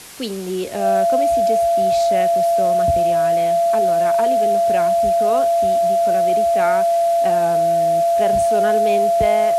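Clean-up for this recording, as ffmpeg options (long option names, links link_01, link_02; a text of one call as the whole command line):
ffmpeg -i in.wav -af "bandreject=frequency=680:width=30,afwtdn=0.014" out.wav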